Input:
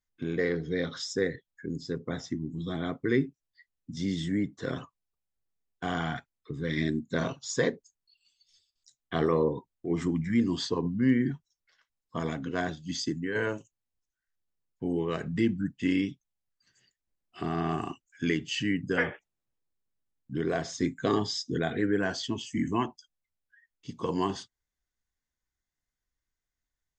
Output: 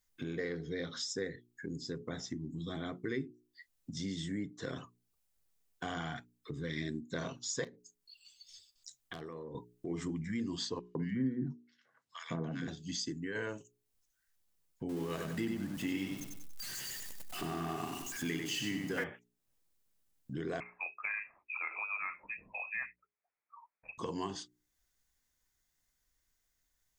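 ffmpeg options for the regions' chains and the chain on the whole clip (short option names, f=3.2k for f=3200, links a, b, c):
-filter_complex "[0:a]asettb=1/sr,asplit=3[a][b][c];[a]atrim=end=7.644[d];[b]atrim=start=7.64:end=9.55,asetpts=PTS-STARTPTS,afade=t=in:d=0.004:c=qsin,afade=t=out:st=1.906:d=0.004:c=qsin,acompressor=threshold=-42dB:ratio=4:attack=3.2:release=140:knee=1:detection=peak,aeval=exprs='0.0237*(abs(mod(val(0)/0.0237+3,4)-2)-1)':c=same[e];[c]atrim=start=9.546[f];[d][e]acrossfade=d=0.004:c1=hsin:c2=qsin[g];[g][f]acrossfade=d=0.004:c1=qsin:c2=hsin,asettb=1/sr,asplit=3[h][i][j];[h]atrim=end=10.794[k];[i]atrim=start=10.79:end=12.68,asetpts=PTS-STARTPTS,afade=t=in:d=0.004:c=qsin,afade=t=out:st=1.886:d=0.004:c=qsin,highpass=f=130:w=0.5412,highpass=f=130:w=1.3066,aemphasis=mode=reproduction:type=bsi,acrossover=split=1500[l][m];[l]adelay=160[n];[n][m]amix=inputs=2:normalize=0,atrim=end_sample=83349[o];[j]atrim=start=12.676[p];[k][o]acrossfade=d=0.004:c1=hsin:c2=qsin[q];[q][p]acrossfade=d=0.004:c1=qsin:c2=hsin,asettb=1/sr,asplit=3[r][s][t];[r]atrim=end=14.894[u];[s]atrim=start=14.89:end=19.04,asetpts=PTS-STARTPTS,afade=t=in:d=0.004:c=qsin,afade=t=out:st=4.146:d=0.004:c=qsin,aeval=exprs='val(0)+0.5*0.0126*sgn(val(0))':c=same,equalizer=f=67:t=o:w=0.57:g=-7.5,aecho=1:1:95|190|285|380:0.562|0.191|0.065|0.0221,atrim=end_sample=183015[v];[t]atrim=start=19.036[w];[u][v]acrossfade=d=0.004:c1=hsin:c2=qsin[x];[x][w]acrossfade=d=0.004:c1=qsin:c2=hsin,asettb=1/sr,asplit=3[y][z][aa];[y]atrim=end=20.604[ab];[z]atrim=start=20.6:end=23.98,asetpts=PTS-STARTPTS,afade=t=in:d=0.004:c=qsin,afade=t=out:st=3.376:d=0.004:c=qsin,highpass=450,lowpass=f=2.4k:t=q:w=0.5098,lowpass=f=2.4k:t=q:w=0.6013,lowpass=f=2.4k:t=q:w=0.9,lowpass=f=2.4k:t=q:w=2.563,afreqshift=-2800[ac];[aa]atrim=start=23.976[ad];[ab][ac]acrossfade=d=0.004:c1=hsin:c2=qsin[ae];[ae][ad]acrossfade=d=0.004:c1=qsin:c2=hsin,highshelf=f=5k:g=8.5,bandreject=f=60:t=h:w=6,bandreject=f=120:t=h:w=6,bandreject=f=180:t=h:w=6,bandreject=f=240:t=h:w=6,bandreject=f=300:t=h:w=6,bandreject=f=360:t=h:w=6,bandreject=f=420:t=h:w=6,acompressor=threshold=-53dB:ratio=2,volume=5.5dB"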